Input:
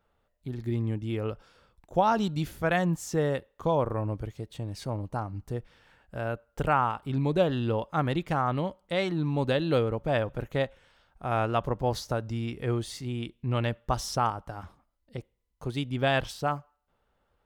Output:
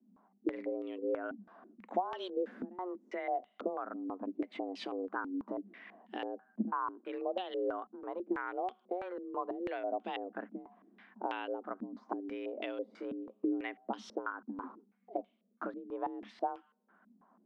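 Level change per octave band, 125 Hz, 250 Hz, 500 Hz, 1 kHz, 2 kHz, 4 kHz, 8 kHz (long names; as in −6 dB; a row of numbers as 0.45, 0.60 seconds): below −30 dB, −7.5 dB, −8.5 dB, −8.5 dB, −10.5 dB, −12.5 dB, below −20 dB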